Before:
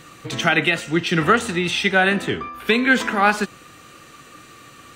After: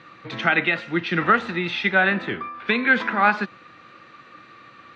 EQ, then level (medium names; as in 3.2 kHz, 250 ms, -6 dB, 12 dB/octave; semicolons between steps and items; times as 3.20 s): cabinet simulation 150–3700 Hz, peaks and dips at 150 Hz -5 dB, 270 Hz -6 dB, 420 Hz -7 dB, 700 Hz -4 dB, 3 kHz -8 dB; 0.0 dB